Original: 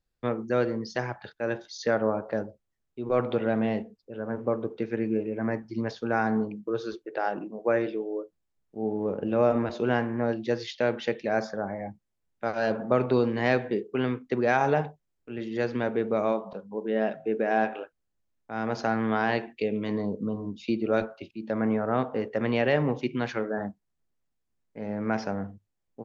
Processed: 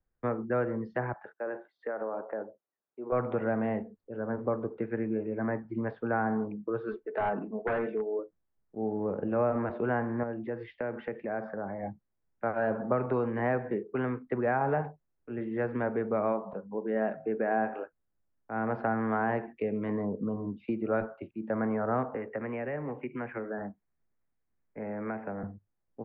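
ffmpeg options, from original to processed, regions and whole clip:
-filter_complex "[0:a]asettb=1/sr,asplit=3[a][b][c];[a]atrim=end=1.134[d];[b]atrim=start=1.13:end=3.12,asetpts=PTS-STARTPTS,afade=t=in:d=0.004:c=qsin,afade=t=out:st=1.986:d=0.004:c=qsin,highpass=400,acompressor=threshold=-28dB:ratio=10:attack=3.2:release=140:knee=1:detection=peak,equalizer=f=5.9k:t=o:w=2:g=-14.5[e];[c]atrim=start=3.116[f];[d][e]acrossfade=d=0.004:c1=hsin:c2=qsin[g];[g][f]acrossfade=d=0.004:c1=qsin:c2=hsin,asettb=1/sr,asplit=3[h][i][j];[h]atrim=end=6.884[k];[i]atrim=start=6.88:end=8.19,asetpts=PTS-STARTPTS,afade=t=in:d=0.004:c=qsin,afade=t=out:st=1.306:d=0.004:c=qsin,highshelf=f=5.6k:g=9.5,aecho=1:1:4.6:0.62,atrim=end_sample=57771,aeval=exprs='0.0841*(abs(mod(val(0)/0.0841+3,4)-2)-1)':c=same[l];[j]atrim=start=8.186[m];[k][l]acrossfade=d=0.004:c1=hsin:c2=qsin[n];[n][m]acrossfade=d=0.004:c1=qsin:c2=hsin,asettb=1/sr,asplit=3[o][p][q];[o]atrim=end=10.234[r];[p]atrim=start=10.23:end=11.83,asetpts=PTS-STARTPTS,afade=t=in:d=0.004:c=qsin,afade=t=out:st=1.596:d=0.004:c=qsin,equalizer=f=4k:w=3.7:g=-4,acompressor=threshold=-34dB:ratio=2:attack=3.2:release=140:knee=1:detection=peak[s];[q]atrim=start=11.826[t];[r][s]acrossfade=d=0.004:c1=hsin:c2=qsin[u];[u][t]acrossfade=d=0.004:c1=qsin:c2=hsin,asettb=1/sr,asplit=3[v][w][x];[v]atrim=end=22.144[y];[w]atrim=start=22.14:end=25.43,asetpts=PTS-STARTPTS,afade=t=in:d=0.004:c=qsin,afade=t=out:st=3.286:d=0.004:c=qsin,acrossover=split=270|610[z][aa][ab];[z]acompressor=threshold=-43dB:ratio=4[ac];[aa]acompressor=threshold=-38dB:ratio=4[ad];[ab]acompressor=threshold=-41dB:ratio=4[ae];[ac][ad][ae]amix=inputs=3:normalize=0,highshelf=f=3.1k:t=q:w=3:g=-7.5[af];[x]atrim=start=25.426[ag];[y][af]acrossfade=d=0.004:c1=hsin:c2=qsin[ah];[ah][ag]acrossfade=d=0.004:c1=qsin:c2=hsin,lowpass=f=1.9k:w=0.5412,lowpass=f=1.9k:w=1.3066,acrossover=split=210|560|1500[ai][aj][ak][al];[ai]acompressor=threshold=-35dB:ratio=4[am];[aj]acompressor=threshold=-34dB:ratio=4[an];[ak]acompressor=threshold=-28dB:ratio=4[ao];[al]acompressor=threshold=-42dB:ratio=4[ap];[am][an][ao][ap]amix=inputs=4:normalize=0"

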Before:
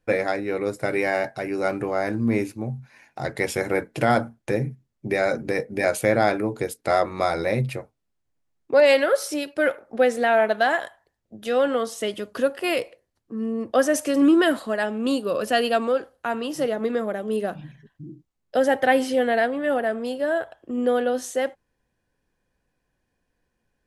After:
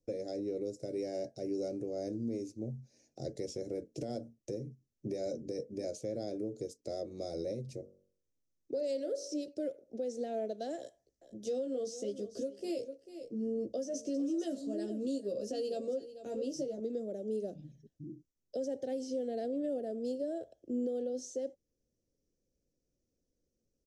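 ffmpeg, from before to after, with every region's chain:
-filter_complex "[0:a]asettb=1/sr,asplit=3[a][b][c];[a]atrim=end=7.624[d];[b]atrim=start=7.62:end=9.48,asetpts=PTS-STARTPTS,afade=t=in:d=0.004:c=qsin,afade=t=out:st=1.856:d=0.004:c=qsin,bandreject=f=970:w=17,bandreject=f=47.15:t=h:w=4,bandreject=f=94.3:t=h:w=4,bandreject=f=141.45:t=h:w=4,bandreject=f=188.6:t=h:w=4,bandreject=f=235.75:t=h:w=4,bandreject=f=282.9:t=h:w=4,bandreject=f=330.05:t=h:w=4,bandreject=f=377.2:t=h:w=4,bandreject=f=424.35:t=h:w=4,bandreject=f=471.5:t=h:w=4,bandreject=f=518.65:t=h:w=4,bandreject=f=565.8:t=h:w=4,bandreject=f=612.95:t=h:w=4,bandreject=f=660.1:t=h:w=4,bandreject=f=707.25:t=h:w=4,bandreject=f=754.4:t=h:w=4,bandreject=f=801.55:t=h:w=4,bandreject=f=848.7:t=h:w=4,bandreject=f=895.85:t=h:w=4,bandreject=f=943:t=h:w=4,bandreject=f=990.15:t=h:w=4,bandreject=f=1.0373k:t=h:w=4,bandreject=f=1.08445k:t=h:w=4,bandreject=f=1.1316k:t=h:w=4,bandreject=f=1.17875k:t=h:w=4,bandreject=f=1.2259k:t=h:w=4,bandreject=f=1.27305k:t=h:w=4,bandreject=f=1.3202k:t=h:w=4,bandreject=f=1.36735k:t=h:w=4,bandreject=f=1.4145k:t=h:w=4,bandreject=f=1.46165k:t=h:w=4,bandreject=f=1.5088k:t=h:w=4[e];[c]atrim=start=9.476[f];[d][e]acrossfade=d=0.004:c1=hsin:c2=qsin[g];[g][f]acrossfade=d=0.004:c1=qsin:c2=hsin,asettb=1/sr,asplit=3[h][i][j];[h]atrim=end=10.774[k];[i]atrim=start=10.77:end=16.8,asetpts=PTS-STARTPTS,afade=t=in:d=0.004:c=qsin,afade=t=out:st=6.026:d=0.004:c=qsin,asplit=2[l][m];[m]adelay=15,volume=-3dB[n];[l][n]amix=inputs=2:normalize=0,atrim=end_sample=265923,aecho=1:1:443:0.158,atrim=end_sample=265923[o];[j]atrim=start=16.796[p];[k][o]acrossfade=d=0.004:c1=hsin:c2=qsin[q];[q][p]acrossfade=d=0.004:c1=qsin:c2=hsin,firequalizer=gain_entry='entry(190,0);entry(280,4);entry(560,2);entry(950,-28);entry(1600,-25);entry(5800,9);entry(11000,-13)':delay=0.05:min_phase=1,acrossover=split=310|700|5300[r][s][t][u];[r]acompressor=threshold=-26dB:ratio=4[v];[s]acompressor=threshold=-23dB:ratio=4[w];[t]acompressor=threshold=-27dB:ratio=4[x];[u]acompressor=threshold=-41dB:ratio=4[y];[v][w][x][y]amix=inputs=4:normalize=0,alimiter=limit=-19.5dB:level=0:latency=1:release=488,volume=-8.5dB"

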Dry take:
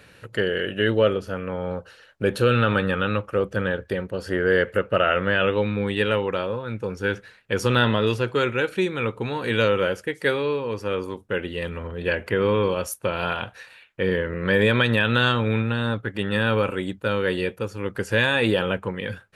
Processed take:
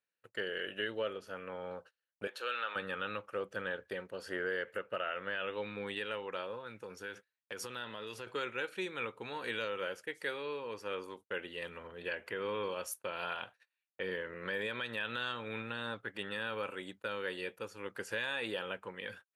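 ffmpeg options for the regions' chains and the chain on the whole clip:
-filter_complex "[0:a]asettb=1/sr,asplit=3[a][b][c];[a]atrim=end=2.274[d];[b]atrim=start=2.27:end=2.76,asetpts=PTS-STARTPTS,afade=t=in:d=0.004:c=qsin,afade=t=out:st=0.486:d=0.004:c=qsin,highpass=690,equalizer=f=10k:w=1.8:g=-8[e];[c]atrim=start=2.756[f];[d][e]acrossfade=d=0.004:c1=hsin:c2=qsin[g];[g][f]acrossfade=d=0.004:c1=qsin:c2=hsin,asettb=1/sr,asplit=3[h][i][j];[h]atrim=end=6.664[k];[i]atrim=start=6.66:end=8.27,asetpts=PTS-STARTPTS,afade=t=in:d=0.004:c=qsin,afade=t=out:st=1.606:d=0.004:c=qsin,highpass=48,highshelf=f=8.2k:g=6.5,acompressor=threshold=-26dB:ratio=5:attack=3.2:release=140:knee=1:detection=peak[l];[j]atrim=start=8.266[m];[k][l]acrossfade=d=0.004:c1=hsin:c2=qsin[n];[n][m]acrossfade=d=0.004:c1=qsin:c2=hsin,agate=range=-32dB:threshold=-38dB:ratio=16:detection=peak,highpass=f=680:p=1,alimiter=limit=-16.5dB:level=0:latency=1:release=361,volume=-9dB"

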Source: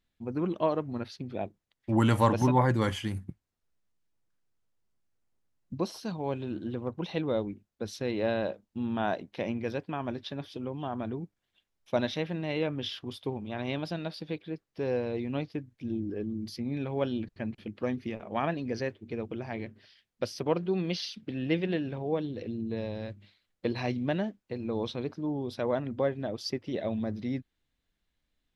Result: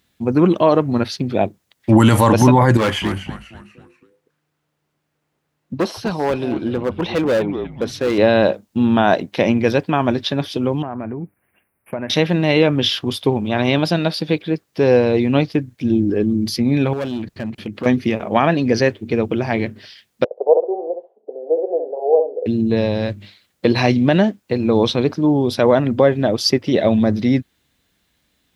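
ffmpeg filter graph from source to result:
-filter_complex "[0:a]asettb=1/sr,asplit=3[a][b][c];[a]atrim=end=2.774[d];[b]atrim=start=2.77:end=8.18,asetpts=PTS-STARTPTS,afade=t=in:d=0.004:c=qsin,afade=t=out:st=5.406:d=0.004:c=qsin,bass=f=250:g=-8,treble=f=4k:g=-12,asplit=5[e][f][g][h][i];[f]adelay=244,afreqshift=-150,volume=-12dB[j];[g]adelay=488,afreqshift=-300,volume=-19.7dB[k];[h]adelay=732,afreqshift=-450,volume=-27.5dB[l];[i]adelay=976,afreqshift=-600,volume=-35.2dB[m];[e][j][k][l][m]amix=inputs=5:normalize=0,atrim=end_sample=238581,asoftclip=type=hard:threshold=-30dB[n];[c]atrim=start=8.176[o];[d][n]acrossfade=d=0.004:c1=hsin:c2=qsin[p];[p][o]acrossfade=d=0.004:c1=qsin:c2=hsin,asettb=1/sr,asplit=3[q][r][s];[q]atrim=end=10.824[t];[r]atrim=start=10.82:end=12.1,asetpts=PTS-STARTPTS,afade=t=in:d=0.004:c=qsin,afade=t=out:st=1.276:d=0.004:c=qsin,asuperstop=centerf=5000:order=12:qfactor=0.75,acompressor=threshold=-41dB:ratio=4:attack=3.2:release=140:knee=1:detection=peak[u];[s]atrim=start=12.096[v];[t][u]acrossfade=d=0.004:c1=hsin:c2=qsin[w];[w][v]acrossfade=d=0.004:c1=qsin:c2=hsin,asettb=1/sr,asplit=3[x][y][z];[x]atrim=end=16.934[aa];[y]atrim=start=16.93:end=17.86,asetpts=PTS-STARTPTS,afade=t=in:d=0.004:c=qsin,afade=t=out:st=0.926:d=0.004:c=qsin,asoftclip=type=hard:threshold=-28dB,acompressor=threshold=-41dB:ratio=3:attack=3.2:release=140:knee=1:detection=peak[ab];[z]atrim=start=17.856[ac];[aa][ab]acrossfade=d=0.004:c1=hsin:c2=qsin[ad];[ad][ac]acrossfade=d=0.004:c1=qsin:c2=hsin,asettb=1/sr,asplit=3[ae][af][ag];[ae]atrim=end=20.244[ah];[af]atrim=start=20.24:end=22.46,asetpts=PTS-STARTPTS,afade=t=in:d=0.004:c=qsin,afade=t=out:st=2.216:d=0.004:c=qsin,asuperpass=centerf=580:order=8:qfactor=1.5,aecho=1:1:67|134|201:0.447|0.067|0.0101,atrim=end_sample=97902[ai];[ag]atrim=start=22.456[aj];[ah][ai]acrossfade=d=0.004:c1=hsin:c2=qsin[ak];[ak][aj]acrossfade=d=0.004:c1=qsin:c2=hsin,highpass=79,highshelf=f=6.5k:g=5.5,alimiter=level_in=18dB:limit=-1dB:release=50:level=0:latency=1,volume=-1dB"

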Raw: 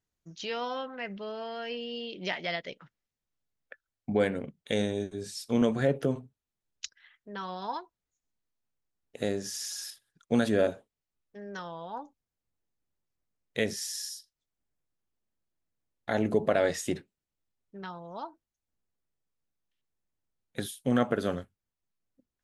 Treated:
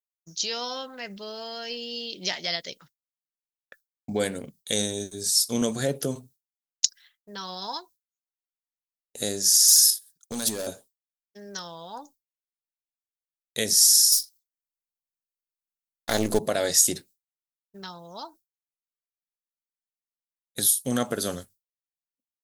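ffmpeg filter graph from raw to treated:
-filter_complex "[0:a]asettb=1/sr,asplit=3[a][b][c];[a]atrim=end=9.684[d];[b]atrim=start=9.68:end=10.67,asetpts=PTS-STARTPTS,afade=t=in:d=0.004:c=qsin,afade=t=out:st=0.986:d=0.004:c=qsin,highshelf=f=5.3k:g=5,acompressor=threshold=-27dB:ratio=3:attack=3.2:release=140:knee=1:detection=peak,volume=27.5dB,asoftclip=hard,volume=-27.5dB[e];[c]atrim=start=10.666[f];[d][e]acrossfade=d=0.004:c1=hsin:c2=qsin[g];[g][f]acrossfade=d=0.004:c1=qsin:c2=hsin,asettb=1/sr,asplit=3[h][i][j];[h]atrim=end=14.124[k];[i]atrim=start=14.12:end=16.39,asetpts=PTS-STARTPTS,afade=t=in:d=0.004:c=qsin,afade=t=out:st=2.266:d=0.004:c=qsin,aeval=exprs='if(lt(val(0),0),0.447*val(0),val(0))':c=same,equalizer=f=140:t=o:w=0.85:g=-5.5,acontrast=46[l];[j]atrim=start=16.386[m];[k][l]acrossfade=d=0.004:c1=hsin:c2=qsin[n];[n][m]acrossfade=d=0.004:c1=qsin:c2=hsin,aemphasis=mode=production:type=75fm,agate=range=-33dB:threshold=-48dB:ratio=3:detection=peak,highshelf=f=3.5k:t=q:w=1.5:g=8"

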